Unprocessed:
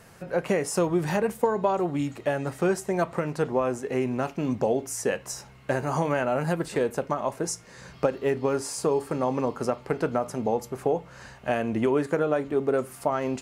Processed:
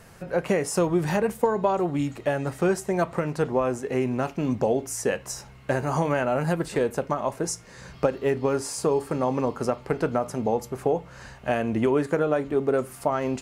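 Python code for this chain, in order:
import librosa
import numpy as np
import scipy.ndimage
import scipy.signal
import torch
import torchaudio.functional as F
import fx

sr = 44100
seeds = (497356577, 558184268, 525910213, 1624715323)

y = fx.low_shelf(x, sr, hz=62.0, db=9.0)
y = F.gain(torch.from_numpy(y), 1.0).numpy()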